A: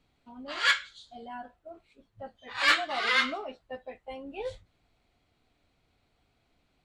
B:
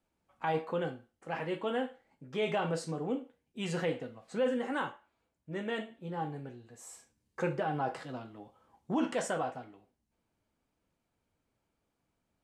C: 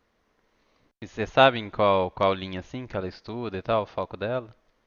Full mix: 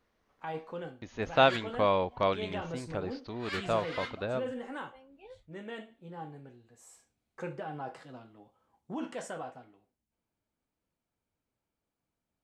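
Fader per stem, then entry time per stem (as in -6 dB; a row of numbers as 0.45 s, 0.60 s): -15.5 dB, -6.5 dB, -5.5 dB; 0.85 s, 0.00 s, 0.00 s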